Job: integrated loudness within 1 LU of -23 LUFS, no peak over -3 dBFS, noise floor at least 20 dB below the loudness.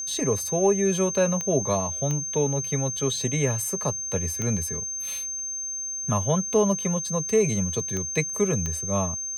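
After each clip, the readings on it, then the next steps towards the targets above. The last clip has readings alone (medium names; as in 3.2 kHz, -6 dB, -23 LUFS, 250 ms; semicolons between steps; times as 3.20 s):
clicks found 5; steady tone 6.3 kHz; tone level -29 dBFS; loudness -25.0 LUFS; peak level -9.5 dBFS; loudness target -23.0 LUFS
-> de-click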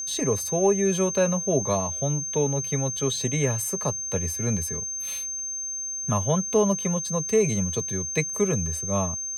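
clicks found 0; steady tone 6.3 kHz; tone level -29 dBFS
-> band-stop 6.3 kHz, Q 30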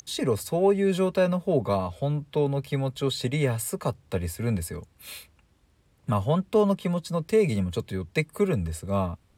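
steady tone not found; loudness -26.5 LUFS; peak level -10.5 dBFS; loudness target -23.0 LUFS
-> trim +3.5 dB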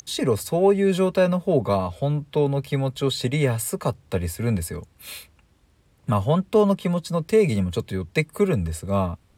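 loudness -23.0 LUFS; peak level -7.0 dBFS; noise floor -60 dBFS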